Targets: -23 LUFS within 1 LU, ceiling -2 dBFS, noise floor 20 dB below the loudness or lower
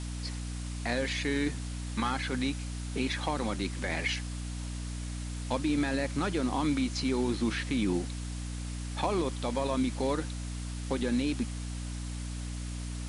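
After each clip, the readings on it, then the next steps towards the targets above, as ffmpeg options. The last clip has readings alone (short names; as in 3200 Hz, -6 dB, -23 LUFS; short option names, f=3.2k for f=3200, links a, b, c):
hum 60 Hz; harmonics up to 300 Hz; hum level -34 dBFS; noise floor -37 dBFS; noise floor target -53 dBFS; loudness -32.5 LUFS; peak -18.0 dBFS; loudness target -23.0 LUFS
-> -af "bandreject=f=60:t=h:w=6,bandreject=f=120:t=h:w=6,bandreject=f=180:t=h:w=6,bandreject=f=240:t=h:w=6,bandreject=f=300:t=h:w=6"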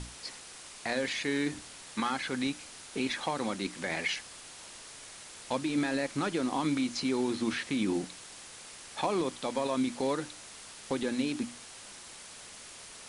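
hum none; noise floor -49 dBFS; noise floor target -53 dBFS
-> -af "afftdn=nr=6:nf=-49"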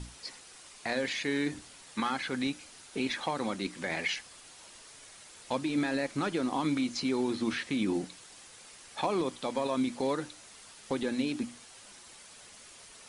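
noise floor -53 dBFS; loudness -32.5 LUFS; peak -19.0 dBFS; loudness target -23.0 LUFS
-> -af "volume=9.5dB"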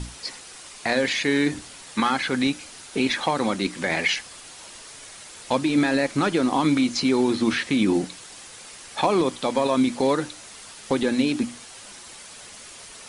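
loudness -23.0 LUFS; peak -9.5 dBFS; noise floor -43 dBFS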